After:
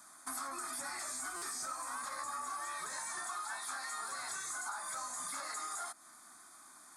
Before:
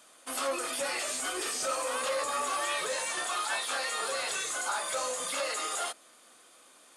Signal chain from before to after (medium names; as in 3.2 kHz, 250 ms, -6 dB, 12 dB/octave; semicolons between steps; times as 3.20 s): static phaser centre 1.2 kHz, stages 4; compression 6:1, threshold -42 dBFS, peak gain reduction 12 dB; buffer glitch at 1.36 s, samples 256, times 9; trim +3 dB